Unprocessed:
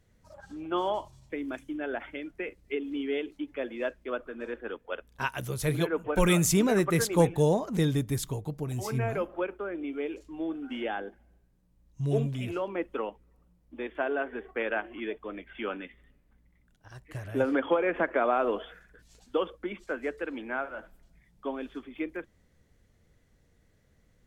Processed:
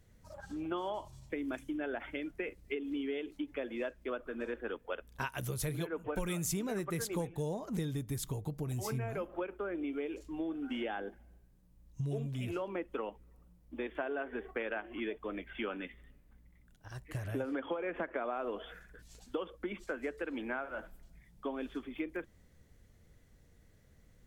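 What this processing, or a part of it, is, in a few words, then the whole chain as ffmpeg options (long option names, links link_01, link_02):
ASMR close-microphone chain: -af "lowshelf=frequency=160:gain=3.5,acompressor=threshold=-34dB:ratio=6,highshelf=frequency=9100:gain=6"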